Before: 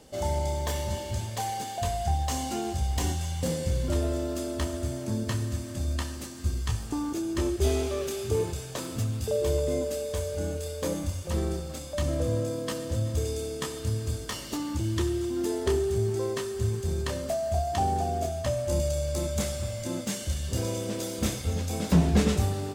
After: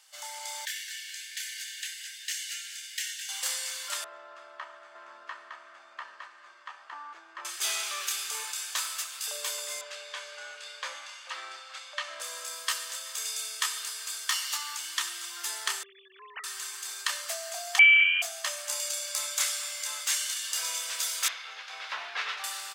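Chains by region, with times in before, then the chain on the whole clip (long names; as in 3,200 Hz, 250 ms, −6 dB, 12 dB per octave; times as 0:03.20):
0:00.65–0:03.29: Butterworth high-pass 1,600 Hz 72 dB per octave + high-shelf EQ 3,000 Hz −8.5 dB + repeating echo 210 ms, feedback 43%, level −11 dB
0:04.04–0:07.45: low-pass filter 1,100 Hz + single-tap delay 910 ms −4.5 dB
0:09.81–0:12.20: low-pass filter 3,300 Hz + double-tracking delay 15 ms −12.5 dB
0:15.83–0:16.44: three sine waves on the formant tracks + downward compressor 2.5 to 1, threshold −28 dBFS
0:17.79–0:18.22: low shelf with overshoot 710 Hz −7.5 dB, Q 3 + voice inversion scrambler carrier 3,100 Hz + comb filter 1.8 ms, depth 32%
0:21.28–0:22.44: variable-slope delta modulation 64 kbit/s + high-frequency loss of the air 280 metres
whole clip: high-pass filter 1,200 Hz 24 dB per octave; automatic gain control gain up to 8 dB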